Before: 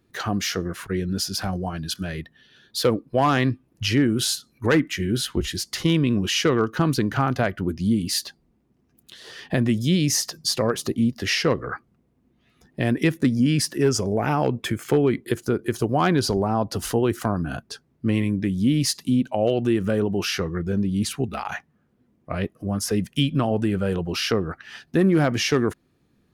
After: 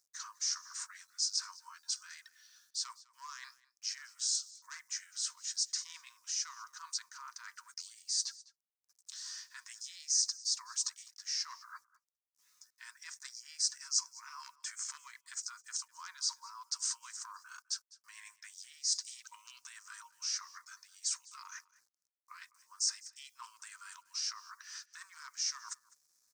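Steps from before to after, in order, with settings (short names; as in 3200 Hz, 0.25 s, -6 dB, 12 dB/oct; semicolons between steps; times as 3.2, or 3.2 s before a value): harmoniser -3 st -9 dB; FFT band-pass 920–8900 Hz; reverse; compressor 5:1, threshold -38 dBFS, peak gain reduction 17 dB; reverse; requantised 12-bit, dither none; resonant high shelf 4200 Hz +11.5 dB, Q 3; on a send: echo 0.204 s -21.5 dB; on the sum: gain -8.5 dB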